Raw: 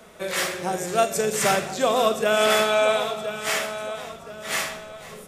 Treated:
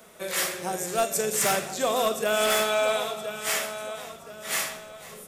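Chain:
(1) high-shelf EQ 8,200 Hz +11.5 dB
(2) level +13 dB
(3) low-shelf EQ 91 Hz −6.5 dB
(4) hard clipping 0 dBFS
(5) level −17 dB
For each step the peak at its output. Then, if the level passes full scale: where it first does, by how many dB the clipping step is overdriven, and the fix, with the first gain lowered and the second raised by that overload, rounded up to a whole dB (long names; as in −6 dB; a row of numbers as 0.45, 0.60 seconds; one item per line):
−6.5, +6.5, +6.5, 0.0, −17.0 dBFS
step 2, 6.5 dB
step 2 +6 dB, step 5 −10 dB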